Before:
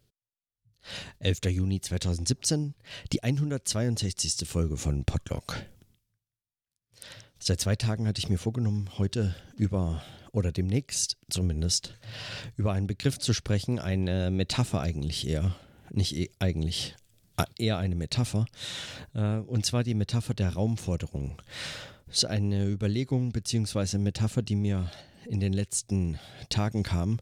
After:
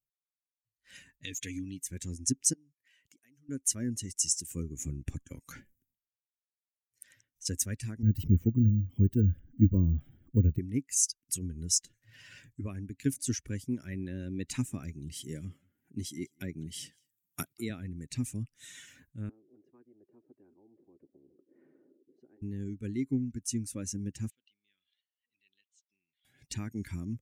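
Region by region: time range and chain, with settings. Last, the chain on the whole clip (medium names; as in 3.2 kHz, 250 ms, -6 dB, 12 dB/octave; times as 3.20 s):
1.19–1.82 s: peaking EQ 3.5 kHz +10.5 dB 1.7 oct + comb 6.9 ms, depth 30% + compression 3:1, threshold -26 dBFS
2.53–3.49 s: high-pass 560 Hz 6 dB/octave + compression, threshold -46 dBFS
8.03–10.59 s: tilt EQ -3 dB/octave + careless resampling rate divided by 2×, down filtered, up hold
15.13–17.70 s: high-pass 99 Hz + delay 195 ms -21 dB
19.29–22.42 s: Butterworth band-pass 370 Hz, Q 4.4 + spectrum-flattening compressor 10:1
24.30–26.25 s: band-pass filter 3.5 kHz, Q 3.3 + distance through air 140 m
whole clip: expander on every frequency bin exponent 1.5; FFT filter 180 Hz 0 dB, 270 Hz +9 dB, 690 Hz -15 dB, 2 kHz +2 dB, 4.3 kHz -10 dB, 6.3 kHz +10 dB; trim -4.5 dB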